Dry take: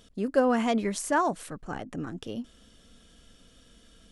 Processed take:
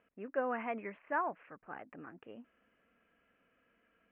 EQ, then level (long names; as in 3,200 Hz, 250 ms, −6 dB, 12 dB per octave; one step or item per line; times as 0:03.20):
high-pass filter 840 Hz 6 dB per octave
Butterworth low-pass 2,600 Hz 72 dB per octave
−6.0 dB